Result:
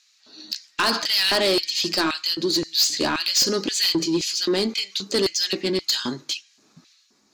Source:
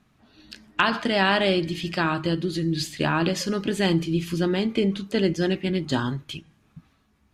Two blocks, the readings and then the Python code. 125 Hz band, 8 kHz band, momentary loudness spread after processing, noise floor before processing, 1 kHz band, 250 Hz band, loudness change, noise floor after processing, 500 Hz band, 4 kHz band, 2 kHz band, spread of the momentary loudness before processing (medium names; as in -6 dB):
-11.0 dB, +14.0 dB, 9 LU, -64 dBFS, -2.0 dB, -3.0 dB, +3.0 dB, -61 dBFS, 0.0 dB, +10.0 dB, -1.0 dB, 6 LU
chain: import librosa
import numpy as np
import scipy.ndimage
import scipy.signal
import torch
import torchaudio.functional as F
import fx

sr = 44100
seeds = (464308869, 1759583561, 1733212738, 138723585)

y = fx.band_shelf(x, sr, hz=5400.0, db=15.0, octaves=1.1)
y = fx.filter_lfo_highpass(y, sr, shape='square', hz=1.9, low_hz=310.0, high_hz=2500.0, q=1.4)
y = 10.0 ** (-17.5 / 20.0) * np.tanh(y / 10.0 ** (-17.5 / 20.0))
y = y * librosa.db_to_amplitude(3.0)